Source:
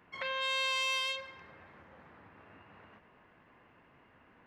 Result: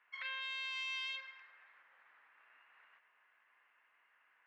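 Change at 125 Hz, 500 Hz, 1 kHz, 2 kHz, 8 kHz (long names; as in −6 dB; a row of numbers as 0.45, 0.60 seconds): below −40 dB, −25.5 dB, −13.5 dB, −6.0 dB, −16.5 dB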